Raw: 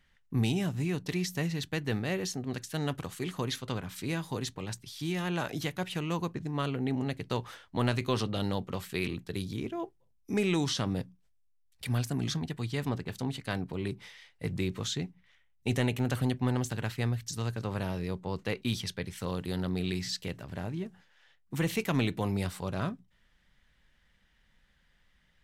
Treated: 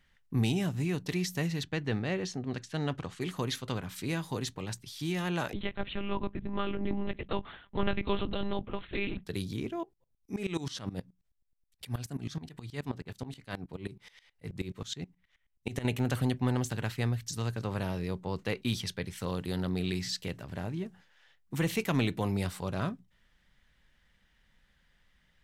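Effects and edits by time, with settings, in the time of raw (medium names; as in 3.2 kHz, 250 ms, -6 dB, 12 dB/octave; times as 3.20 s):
1.63–3.21 s: distance through air 84 m
5.53–9.26 s: monotone LPC vocoder at 8 kHz 200 Hz
9.83–15.85 s: sawtooth tremolo in dB swelling 9.4 Hz, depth 19 dB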